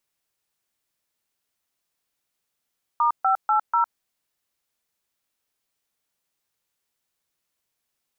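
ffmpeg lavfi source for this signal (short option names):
-f lavfi -i "aevalsrc='0.106*clip(min(mod(t,0.245),0.107-mod(t,0.245))/0.002,0,1)*(eq(floor(t/0.245),0)*(sin(2*PI*941*mod(t,0.245))+sin(2*PI*1209*mod(t,0.245)))+eq(floor(t/0.245),1)*(sin(2*PI*770*mod(t,0.245))+sin(2*PI*1336*mod(t,0.245)))+eq(floor(t/0.245),2)*(sin(2*PI*852*mod(t,0.245))+sin(2*PI*1336*mod(t,0.245)))+eq(floor(t/0.245),3)*(sin(2*PI*941*mod(t,0.245))+sin(2*PI*1336*mod(t,0.245))))':d=0.98:s=44100"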